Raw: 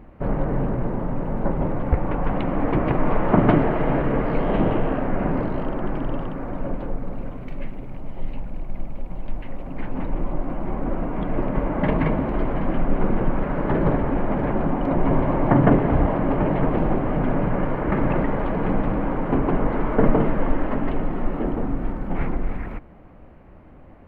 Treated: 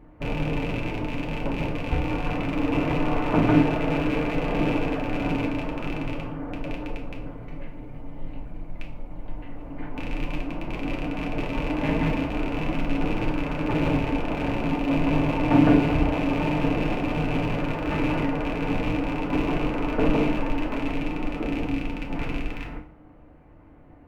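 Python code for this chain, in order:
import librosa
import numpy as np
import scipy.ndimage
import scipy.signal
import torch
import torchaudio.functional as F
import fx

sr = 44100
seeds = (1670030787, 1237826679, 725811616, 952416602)

y = fx.rattle_buzz(x, sr, strikes_db=-25.0, level_db=-17.0)
y = fx.rev_fdn(y, sr, rt60_s=0.48, lf_ratio=1.0, hf_ratio=0.95, size_ms=20.0, drr_db=-0.5)
y = y * librosa.db_to_amplitude(-7.5)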